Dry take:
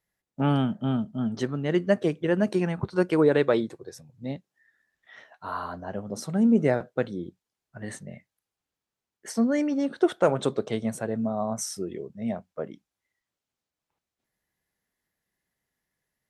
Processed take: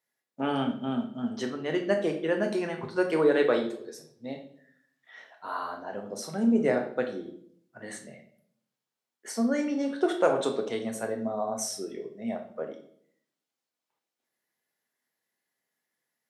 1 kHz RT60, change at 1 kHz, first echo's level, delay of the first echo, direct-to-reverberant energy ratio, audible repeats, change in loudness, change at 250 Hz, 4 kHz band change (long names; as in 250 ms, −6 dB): 0.55 s, −0.5 dB, no echo audible, no echo audible, 3.5 dB, no echo audible, −2.5 dB, −3.5 dB, 0.0 dB